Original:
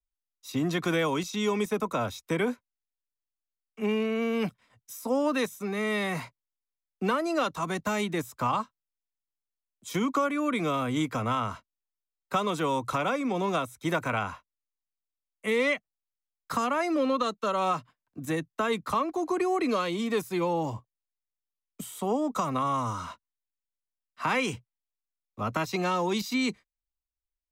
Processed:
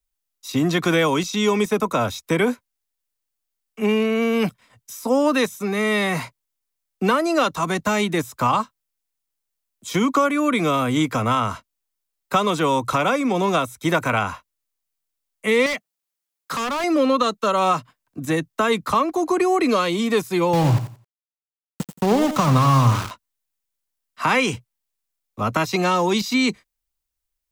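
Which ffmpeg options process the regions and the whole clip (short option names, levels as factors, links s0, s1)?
-filter_complex "[0:a]asettb=1/sr,asplit=3[s0][s1][s2];[s0]atrim=end=15.664[s3];[s1]atrim=start=15.66:end=16.84,asetpts=PTS-STARTPTS,afade=t=in:d=0.004:c=qsin,afade=t=out:st=1.176:d=0.004:c=qsin,highpass=160,asoftclip=type=hard:threshold=0.0299[s4];[s2]atrim=start=16.836[s5];[s3][s4]acrossfade=d=0.004:c1=hsin:c2=qsin[s6];[s6][s5]acrossfade=d=0.004:c1=qsin:c2=hsin,asettb=1/sr,asplit=3[s7][s8][s9];[s7]atrim=end=20.534[s10];[s8]atrim=start=20.53:end=23.11,asetpts=PTS-STARTPTS,afade=t=in:d=0.004:c=qsin,afade=t=out:st=2.576:d=0.004:c=qsin,equalizer=f=130:t=o:w=0.85:g=14,aeval=exprs='val(0)*gte(abs(val(0)),0.0282)':c=same,aecho=1:1:87|174|261:0.282|0.062|0.0136,atrim=end_sample=113778[s11];[s9]atrim=start=23.106[s12];[s10][s11]acrossfade=d=0.004:c1=hsin:c2=qsin[s13];[s13][s12]acrossfade=d=0.004:c1=qsin:c2=hsin,acrossover=split=6600[s14][s15];[s15]acompressor=threshold=0.00282:ratio=4:attack=1:release=60[s16];[s14][s16]amix=inputs=2:normalize=0,highshelf=f=6200:g=6,volume=2.51"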